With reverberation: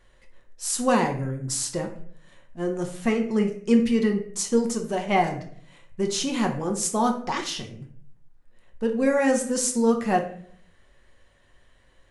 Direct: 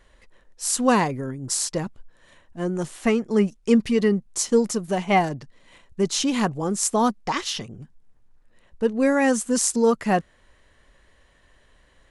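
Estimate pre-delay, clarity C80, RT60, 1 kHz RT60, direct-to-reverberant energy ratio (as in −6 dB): 6 ms, 13.0 dB, 0.55 s, 0.50 s, 3.0 dB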